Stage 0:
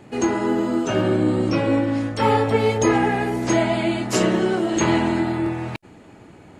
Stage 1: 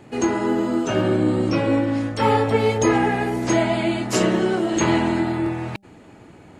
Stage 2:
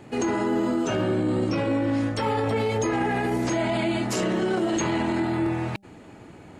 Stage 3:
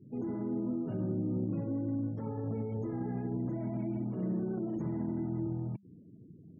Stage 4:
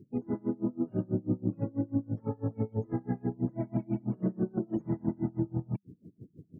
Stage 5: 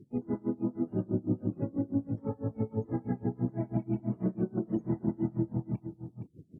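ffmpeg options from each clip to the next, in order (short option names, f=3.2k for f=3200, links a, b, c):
-af "bandreject=f=198.7:t=h:w=4,bandreject=f=397.4:t=h:w=4,bandreject=f=596.1:t=h:w=4,bandreject=f=794.8:t=h:w=4"
-af "alimiter=limit=-17dB:level=0:latency=1:release=22"
-af "bandpass=f=160:t=q:w=1.7:csg=0,afftfilt=real='re*gte(hypot(re,im),0.00282)':imag='im*gte(hypot(re,im),0.00282)':win_size=1024:overlap=0.75,volume=-2.5dB"
-af "aeval=exprs='val(0)*pow(10,-30*(0.5-0.5*cos(2*PI*6.1*n/s))/20)':c=same,volume=8.5dB"
-af "aecho=1:1:468:0.316" -ar 48000 -c:a libvorbis -b:a 32k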